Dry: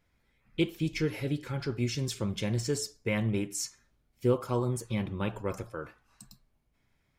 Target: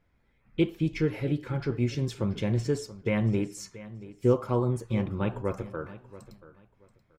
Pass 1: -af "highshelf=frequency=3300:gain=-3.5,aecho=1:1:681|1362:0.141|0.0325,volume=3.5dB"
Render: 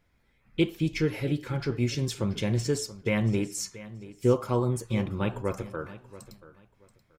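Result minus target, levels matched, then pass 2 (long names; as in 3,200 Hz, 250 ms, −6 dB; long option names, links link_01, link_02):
8,000 Hz band +8.5 dB
-af "highshelf=frequency=3300:gain=-14,aecho=1:1:681|1362:0.141|0.0325,volume=3.5dB"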